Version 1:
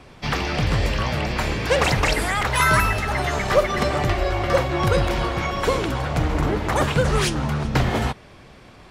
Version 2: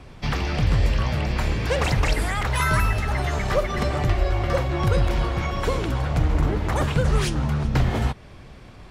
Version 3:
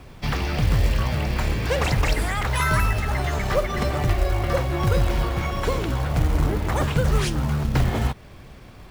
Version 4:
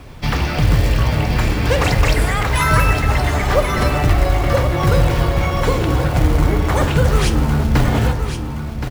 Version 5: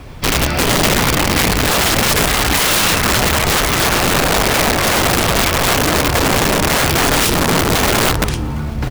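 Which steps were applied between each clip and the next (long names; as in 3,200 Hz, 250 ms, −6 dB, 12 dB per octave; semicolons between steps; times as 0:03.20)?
in parallel at −1 dB: downward compressor, threshold −27 dBFS, peak gain reduction 14.5 dB; on the sum: low-shelf EQ 140 Hz +10 dB; level −7.5 dB
log-companded quantiser 6 bits
single-tap delay 1,071 ms −9 dB; convolution reverb RT60 1.7 s, pre-delay 3 ms, DRR 8 dB; level +5.5 dB
wrap-around overflow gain 12.5 dB; level +3.5 dB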